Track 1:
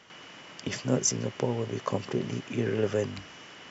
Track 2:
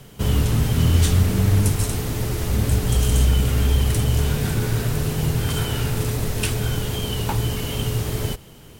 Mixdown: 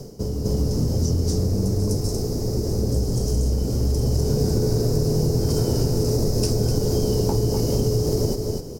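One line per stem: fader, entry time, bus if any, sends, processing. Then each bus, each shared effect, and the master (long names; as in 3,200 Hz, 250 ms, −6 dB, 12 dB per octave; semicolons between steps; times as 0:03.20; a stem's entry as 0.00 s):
−17.5 dB, 0.00 s, no send, no echo send, no processing
0.0 dB, 0.00 s, no send, echo send −9.5 dB, low-shelf EQ 170 Hz +8 dB; automatic ducking −16 dB, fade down 0.30 s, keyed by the first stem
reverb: not used
echo: single-tap delay 251 ms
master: drawn EQ curve 100 Hz 0 dB, 460 Hz +14 dB, 1,600 Hz −10 dB, 3,400 Hz −14 dB, 5,100 Hz +15 dB, 8,300 Hz +1 dB; downward compressor, threshold −17 dBFS, peak gain reduction 9 dB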